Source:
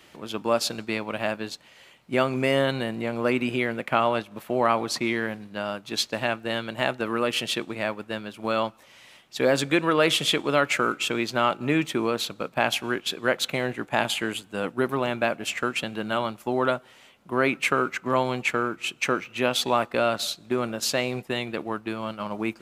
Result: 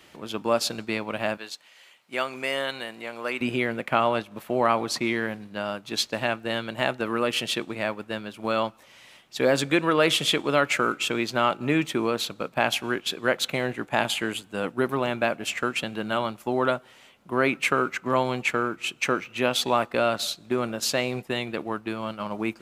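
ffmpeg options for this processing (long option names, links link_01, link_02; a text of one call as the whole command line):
ffmpeg -i in.wav -filter_complex "[0:a]asettb=1/sr,asplit=3[link_01][link_02][link_03];[link_01]atrim=end=1.374[link_04];[link_02]atrim=start=1.37:end=3.41,asetpts=PTS-STARTPTS,afade=type=in:duration=0.004:curve=qsin,afade=type=out:start_time=2.036:duration=0.004:curve=qsin,highpass=frequency=1100:poles=1[link_05];[link_03]atrim=start=3.406[link_06];[link_04][link_05]acrossfade=duration=0.004:curve1=hsin:curve2=qsin[link_07];[link_07][link_06]acrossfade=duration=0.004:curve1=qsin:curve2=hsin" out.wav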